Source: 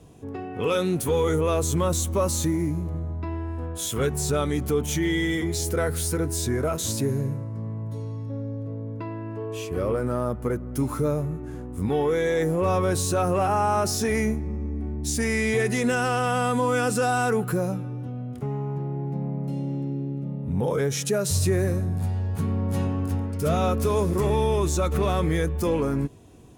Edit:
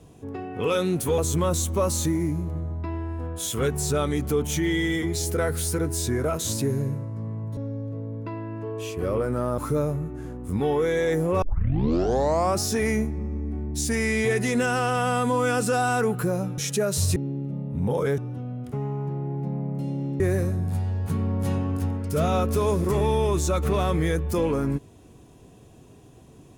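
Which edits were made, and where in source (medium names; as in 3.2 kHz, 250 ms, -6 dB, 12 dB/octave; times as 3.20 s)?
1.18–1.57 s: delete
7.96–8.31 s: delete
10.32–10.87 s: delete
12.71 s: tape start 1.19 s
17.87–19.89 s: swap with 20.91–21.49 s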